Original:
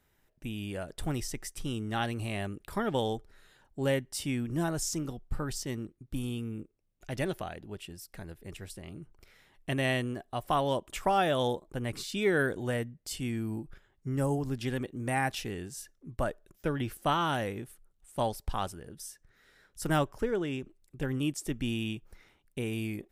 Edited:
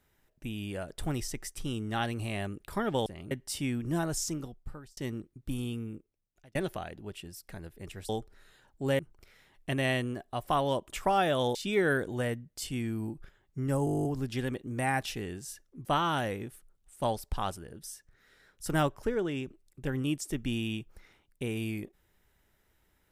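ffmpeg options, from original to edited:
-filter_complex "[0:a]asplit=19[s0][s1][s2][s3][s4][s5][s6][s7][s8][s9][s10][s11][s12][s13][s14][s15][s16][s17][s18];[s0]atrim=end=3.062[s19];[s1]atrim=start=8.738:end=8.992[s20];[s2]atrim=start=3.958:end=5.62,asetpts=PTS-STARTPTS,afade=t=out:st=0.932:d=0.73[s21];[s3]atrim=start=5.62:end=7.2,asetpts=PTS-STARTPTS,afade=t=in:d=0.004:c=hsin,afade=t=out:st=0.8:d=0.78[s22];[s4]atrim=start=7.2:end=8.742,asetpts=PTS-STARTPTS,afade=t=in:d=0.004:c=hsin[s23];[s5]atrim=start=3.058:end=3.962[s24];[s6]atrim=start=8.988:end=11.552[s25];[s7]atrim=start=12.038:end=14.362[s26];[s8]atrim=start=14.338:end=14.362[s27];[s9]atrim=start=14.338:end=14.362[s28];[s10]atrim=start=14.338:end=14.362[s29];[s11]atrim=start=14.338:end=14.362[s30];[s12]atrim=start=14.338:end=14.362[s31];[s13]atrim=start=14.338:end=14.362[s32];[s14]atrim=start=14.338:end=14.362[s33];[s15]atrim=start=14.338:end=14.362[s34];[s16]atrim=start=14.338:end=14.362[s35];[s17]atrim=start=14.338:end=16.142[s36];[s18]atrim=start=17.008[s37];[s19][s20]acrossfade=d=0.004:c1=hsin:c2=hsin[s38];[s21][s22][s23]concat=n=3:v=0:a=1[s39];[s38][s39]acrossfade=d=0.004:c1=hsin:c2=hsin[s40];[s40][s24]acrossfade=d=0.004:c1=hsin:c2=hsin[s41];[s41][s25]acrossfade=d=0.004:c1=hsin:c2=hsin[s42];[s42][s26]acrossfade=d=0.004:c1=hsin:c2=hsin[s43];[s43][s27]acrossfade=d=0.004:c1=hsin:c2=hsin[s44];[s44][s28]acrossfade=d=0.004:c1=hsin:c2=hsin[s45];[s45][s29]acrossfade=d=0.004:c1=hsin:c2=hsin[s46];[s46][s30]acrossfade=d=0.004:c1=hsin:c2=hsin[s47];[s47][s31]acrossfade=d=0.004:c1=hsin:c2=hsin[s48];[s48][s32]acrossfade=d=0.004:c1=hsin:c2=hsin[s49];[s49][s33]acrossfade=d=0.004:c1=hsin:c2=hsin[s50];[s50][s34]acrossfade=d=0.004:c1=hsin:c2=hsin[s51];[s51][s35]acrossfade=d=0.004:c1=hsin:c2=hsin[s52];[s52][s36]acrossfade=d=0.004:c1=hsin:c2=hsin[s53];[s53][s37]acrossfade=d=0.004:c1=hsin:c2=hsin"

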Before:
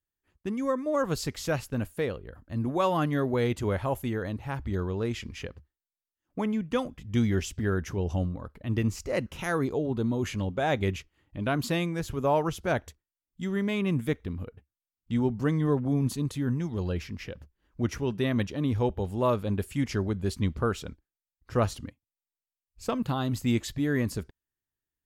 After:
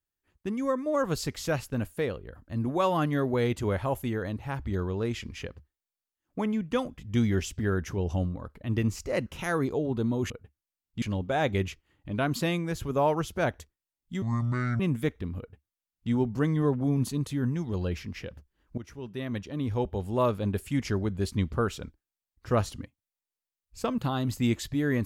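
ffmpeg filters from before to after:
-filter_complex "[0:a]asplit=6[s0][s1][s2][s3][s4][s5];[s0]atrim=end=10.302[s6];[s1]atrim=start=14.428:end=15.152[s7];[s2]atrim=start=10.298:end=13.504[s8];[s3]atrim=start=13.5:end=13.84,asetpts=PTS-STARTPTS,asetrate=26019,aresample=44100[s9];[s4]atrim=start=13.836:end=17.82,asetpts=PTS-STARTPTS,afade=t=out:st=3.98:d=0.004:c=hsin:silence=0.158489[s10];[s5]atrim=start=17.82,asetpts=PTS-STARTPTS,afade=t=in:d=1.39:silence=0.158489[s11];[s6][s7]acrossfade=d=0.004:c1=hsin:c2=hsin[s12];[s12][s8]acrossfade=d=0.004:c1=hsin:c2=hsin[s13];[s13][s9]acrossfade=d=0.004:c1=hsin:c2=hsin[s14];[s10][s11]concat=n=2:v=0:a=1[s15];[s14][s15]acrossfade=d=0.004:c1=hsin:c2=hsin"

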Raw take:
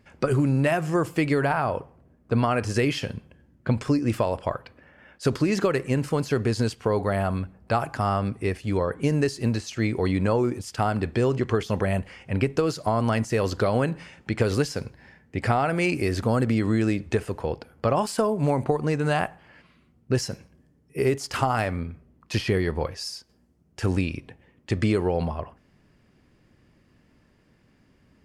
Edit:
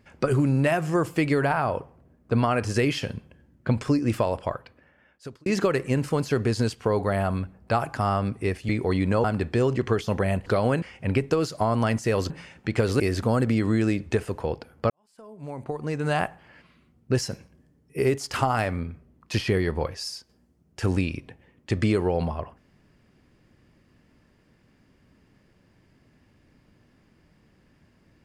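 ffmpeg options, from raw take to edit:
-filter_complex "[0:a]asplit=9[s0][s1][s2][s3][s4][s5][s6][s7][s8];[s0]atrim=end=5.46,asetpts=PTS-STARTPTS,afade=t=out:st=4.32:d=1.14[s9];[s1]atrim=start=5.46:end=8.692,asetpts=PTS-STARTPTS,afade=t=in:d=0.004:c=hsin[s10];[s2]atrim=start=9.828:end=10.382[s11];[s3]atrim=start=10.858:end=12.082[s12];[s4]atrim=start=13.558:end=13.922[s13];[s5]atrim=start=12.078:end=13.562[s14];[s6]atrim=start=13.918:end=14.622[s15];[s7]atrim=start=15.998:end=17.9,asetpts=PTS-STARTPTS,afade=t=out:st=1.898:d=0.004:c=hsin[s16];[s8]atrim=start=17.9,asetpts=PTS-STARTPTS,afade=t=in:d=1.31:c=qua[s17];[s9][s10]concat=n=2:v=0:a=1[s18];[s18][s11]acrossfade=d=0.004:c1=hsin:c2=hsin[s19];[s19][s12]acrossfade=d=0.004:c1=hsin:c2=hsin[s20];[s20][s13]acrossfade=d=0.004:c1=hsin:c2=hsin[s21];[s21][s14]acrossfade=d=0.004:c1=hsin:c2=hsin[s22];[s22][s15]acrossfade=d=0.004:c1=hsin:c2=hsin[s23];[s16][s17]concat=n=2:v=0:a=1[s24];[s23][s24]acrossfade=d=0.004:c1=hsin:c2=hsin"

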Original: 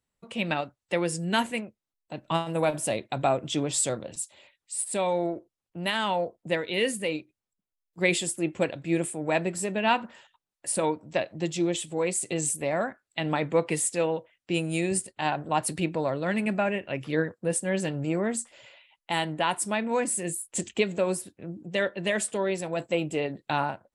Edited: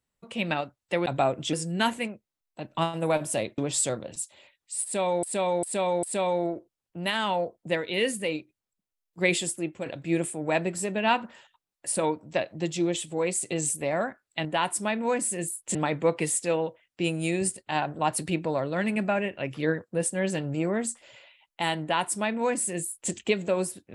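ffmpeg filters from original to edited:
-filter_complex "[0:a]asplit=10[s0][s1][s2][s3][s4][s5][s6][s7][s8][s9];[s0]atrim=end=1.062[s10];[s1]atrim=start=3.108:end=3.582[s11];[s2]atrim=start=1.058:end=3.112[s12];[s3]atrim=start=3.578:end=5.232[s13];[s4]atrim=start=4.828:end=5.232[s14];[s5]atrim=start=4.828:end=5.232[s15];[s6]atrim=start=4.828:end=8.66,asetpts=PTS-STARTPTS,afade=t=out:st=3.452:d=0.38:silence=0.298538[s16];[s7]atrim=start=8.66:end=13.252,asetpts=PTS-STARTPTS,afade=t=in:d=0.004:c=hsin:silence=0.298538[s17];[s8]atrim=start=19.308:end=20.612[s18];[s9]atrim=start=13.248[s19];[s10][s11]acrossfade=d=0.004:c1=hsin:c2=hsin[s20];[s20][s12]acrossfade=d=0.004:c1=hsin:c2=hsin[s21];[s21][s13]acrossfade=d=0.004:c1=hsin:c2=hsin[s22];[s22][s14]acrossfade=d=0.004:c1=hsin:c2=hsin[s23];[s23][s15]acrossfade=d=0.004:c1=hsin:c2=hsin[s24];[s16][s17]concat=n=2:v=0:a=1[s25];[s24][s25]acrossfade=d=0.004:c1=hsin:c2=hsin[s26];[s26][s18]acrossfade=d=0.004:c1=hsin:c2=hsin[s27];[s27][s19]acrossfade=d=0.004:c1=hsin:c2=hsin"

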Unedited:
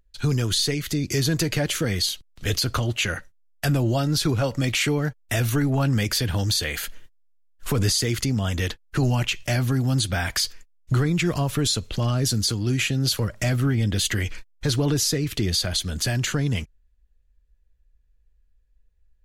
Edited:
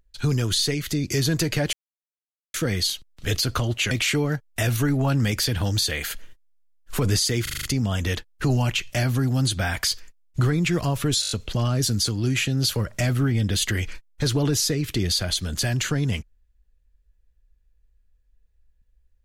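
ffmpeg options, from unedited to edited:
-filter_complex "[0:a]asplit=13[s0][s1][s2][s3][s4][s5][s6][s7][s8][s9][s10][s11][s12];[s0]atrim=end=1.73,asetpts=PTS-STARTPTS,afade=t=out:st=1.726:d=0.004:c=hsin,apad=pad_dur=0.81[s13];[s1]atrim=start=1.73:end=3.102,asetpts=PTS-STARTPTS,afade=t=in:d=0.004:c=hsin[s14];[s2]atrim=start=4.638:end=8.202[s15];[s3]atrim=start=8.158:end=8.202[s16];[s4]atrim=start=8.158:end=8.202[s17];[s5]atrim=start=8.158:end=8.202[s18];[s6]atrim=start=8.158:end=8.202[s19];[s7]atrim=start=8.158:end=11.762[s20];[s8]atrim=start=11.738:end=11.762[s21];[s9]atrim=start=11.738:end=11.762[s22];[s10]atrim=start=11.738:end=11.762[s23];[s11]atrim=start=11.738:end=11.762[s24];[s12]atrim=start=11.738[s25];[s13][s14]concat=n=2:v=0:a=1[s26];[s26][s15]acrossfade=d=0.004:c1=hsin:c2=hsin[s27];[s27][s16]acrossfade=d=0.004:c1=hsin:c2=hsin[s28];[s28][s17]acrossfade=d=0.004:c1=hsin:c2=hsin[s29];[s29][s18]acrossfade=d=0.004:c1=hsin:c2=hsin[s30];[s30][s19]acrossfade=d=0.004:c1=hsin:c2=hsin[s31];[s31][s20]acrossfade=d=0.004:c1=hsin:c2=hsin[s32];[s32][s21]acrossfade=d=0.004:c1=hsin:c2=hsin[s33];[s33][s22]acrossfade=d=0.004:c1=hsin:c2=hsin[s34];[s34][s23]acrossfade=d=0.004:c1=hsin:c2=hsin[s35];[s35][s24]acrossfade=d=0.004:c1=hsin:c2=hsin[s36];[s36][s25]acrossfade=d=0.004:c1=hsin:c2=hsin"

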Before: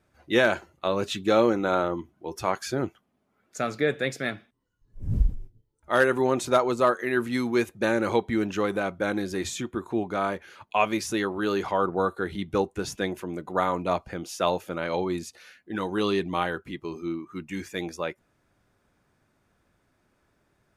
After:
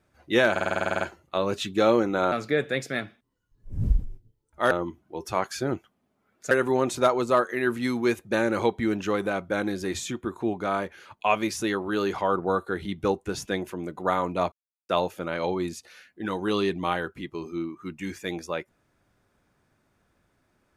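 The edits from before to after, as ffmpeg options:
-filter_complex "[0:a]asplit=16[s0][s1][s2][s3][s4][s5][s6][s7][s8][s9][s10][s11][s12][s13][s14][s15];[s0]atrim=end=0.562[s16];[s1]atrim=start=0.508:end=0.562[s17];[s2]atrim=start=0.508:end=0.562[s18];[s3]atrim=start=0.508:end=0.562[s19];[s4]atrim=start=0.508:end=0.562[s20];[s5]atrim=start=0.508:end=0.562[s21];[s6]atrim=start=0.508:end=0.562[s22];[s7]atrim=start=0.508:end=0.562[s23];[s8]atrim=start=0.508:end=0.562[s24];[s9]atrim=start=0.508:end=0.562[s25];[s10]atrim=start=0.508:end=1.822[s26];[s11]atrim=start=3.618:end=6.012[s27];[s12]atrim=start=1.818:end=3.622[s28];[s13]atrim=start=6.008:end=14.02,asetpts=PTS-STARTPTS,afade=t=out:st=8.008:d=0.004:c=hsin[s29];[s14]atrim=start=14.02:end=14.39,asetpts=PTS-STARTPTS,volume=0[s30];[s15]atrim=start=14.39,asetpts=PTS-STARTPTS,afade=t=in:d=0.004:c=hsin[s31];[s16][s17]acrossfade=d=0.004:c1=hsin:c2=hsin[s32];[s32][s18]acrossfade=d=0.004:c1=hsin:c2=hsin[s33];[s33][s19]acrossfade=d=0.004:c1=hsin:c2=hsin[s34];[s34][s20]acrossfade=d=0.004:c1=hsin:c2=hsin[s35];[s35][s21]acrossfade=d=0.004:c1=hsin:c2=hsin[s36];[s36][s22]acrossfade=d=0.004:c1=hsin:c2=hsin[s37];[s37][s23]acrossfade=d=0.004:c1=hsin:c2=hsin[s38];[s38][s24]acrossfade=d=0.004:c1=hsin:c2=hsin[s39];[s39][s25]acrossfade=d=0.004:c1=hsin:c2=hsin[s40];[s40][s26]acrossfade=d=0.004:c1=hsin:c2=hsin[s41];[s41][s27]acrossfade=d=0.004:c1=hsin:c2=hsin[s42];[s42][s28]acrossfade=d=0.004:c1=hsin:c2=hsin[s43];[s29][s30][s31]concat=n=3:v=0:a=1[s44];[s43][s44]acrossfade=d=0.004:c1=hsin:c2=hsin"

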